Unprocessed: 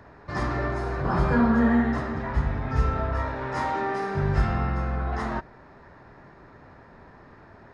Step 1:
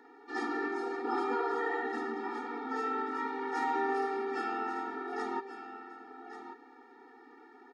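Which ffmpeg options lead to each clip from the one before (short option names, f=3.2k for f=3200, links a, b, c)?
-filter_complex "[0:a]afftfilt=real='re*lt(hypot(re,im),0.398)':imag='im*lt(hypot(re,im),0.398)':win_size=1024:overlap=0.75,asplit=2[a][b];[b]aecho=0:1:1135:0.282[c];[a][c]amix=inputs=2:normalize=0,afftfilt=real='re*eq(mod(floor(b*sr/1024/240),2),1)':imag='im*eq(mod(floor(b*sr/1024/240),2),1)':win_size=1024:overlap=0.75,volume=-2.5dB"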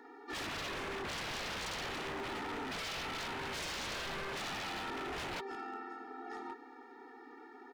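-af "aeval=exprs='0.0133*(abs(mod(val(0)/0.0133+3,4)-2)-1)':c=same,volume=2dB"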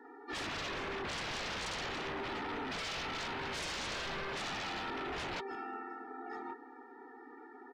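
-af "afftdn=nr=14:nf=-58,volume=1dB"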